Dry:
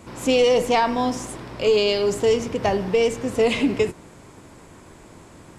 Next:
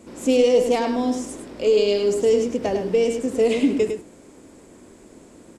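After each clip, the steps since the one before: ten-band EQ 125 Hz -7 dB, 250 Hz +9 dB, 500 Hz +6 dB, 1000 Hz -4 dB, 8000 Hz +6 dB; on a send: echo 0.103 s -7 dB; on the sum: gain -6.5 dB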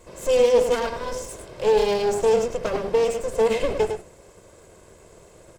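minimum comb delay 1.9 ms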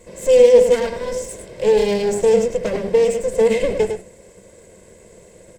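thirty-one-band EQ 200 Hz +10 dB, 500 Hz +7 dB, 800 Hz -4 dB, 1250 Hz -10 dB, 2000 Hz +6 dB, 8000 Hz +6 dB; gain +1 dB

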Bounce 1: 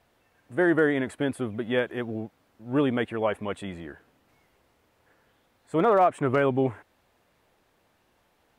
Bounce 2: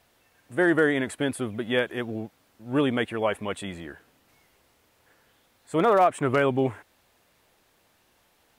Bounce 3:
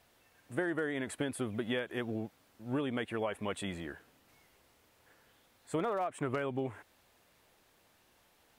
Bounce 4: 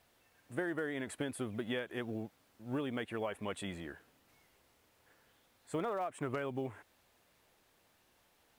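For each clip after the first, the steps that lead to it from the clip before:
high shelf 2700 Hz +9 dB
compressor 16:1, threshold -27 dBFS, peak gain reduction 13 dB; gain -3 dB
companded quantiser 8-bit; gain -3 dB

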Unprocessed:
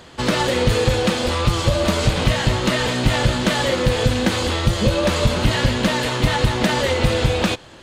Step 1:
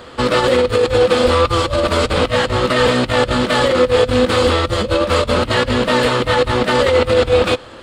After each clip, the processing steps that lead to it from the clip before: negative-ratio compressor -20 dBFS, ratio -0.5; thirty-one-band EQ 160 Hz -7 dB, 250 Hz +3 dB, 500 Hz +8 dB, 1250 Hz +8 dB, 6300 Hz -8 dB, 12500 Hz -8 dB; gain +2.5 dB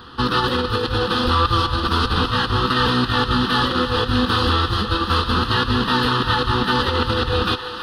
fixed phaser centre 2200 Hz, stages 6; thinning echo 0.323 s, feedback 83%, high-pass 400 Hz, level -11.5 dB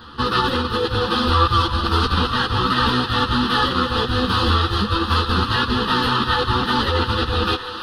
ensemble effect; gain +3 dB

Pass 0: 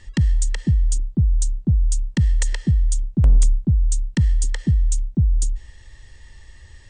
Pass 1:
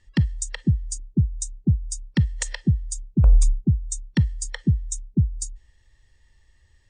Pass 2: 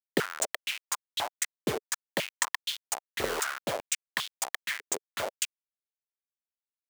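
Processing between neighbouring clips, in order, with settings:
spectral noise reduction 15 dB
level-crossing sampler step -23.5 dBFS; stepped high-pass 5 Hz 430–3400 Hz

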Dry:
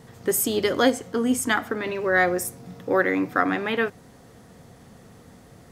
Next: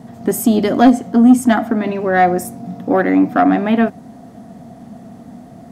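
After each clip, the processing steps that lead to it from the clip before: small resonant body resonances 230/670 Hz, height 18 dB, ringing for 30 ms; soft clip -1.5 dBFS, distortion -17 dB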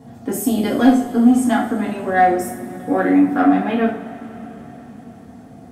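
two-slope reverb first 0.41 s, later 4.6 s, from -21 dB, DRR -4 dB; gain -8.5 dB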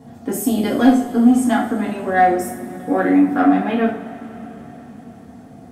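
notches 60/120 Hz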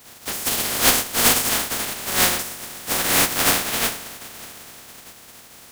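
spectral contrast lowered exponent 0.14; gain -4.5 dB

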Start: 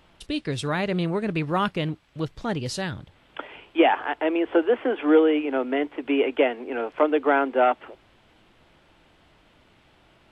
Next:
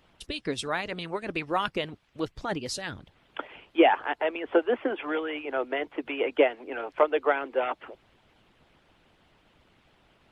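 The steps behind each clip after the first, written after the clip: harmonic-percussive split harmonic -15 dB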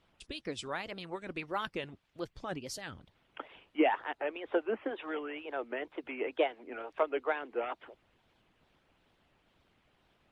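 wow and flutter 140 cents; gain -8 dB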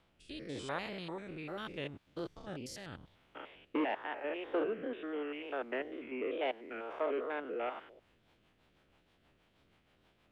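stepped spectrum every 0.1 s; rotary speaker horn 0.85 Hz, later 6.3 Hz, at 7.52; core saturation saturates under 570 Hz; gain +4 dB

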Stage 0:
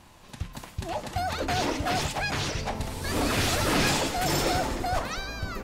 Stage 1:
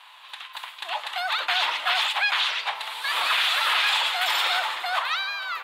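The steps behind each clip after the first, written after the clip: Chebyshev high-pass 980 Hz, order 3; resonant high shelf 4500 Hz -8.5 dB, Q 3; limiter -21 dBFS, peak gain reduction 6 dB; gain +8 dB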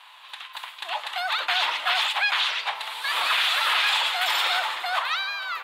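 nothing audible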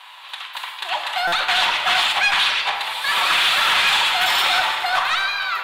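soft clip -18 dBFS, distortion -17 dB; reverb RT60 1.3 s, pre-delay 5 ms, DRR 3.5 dB; stuck buffer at 1.27, samples 256, times 8; gain +6 dB

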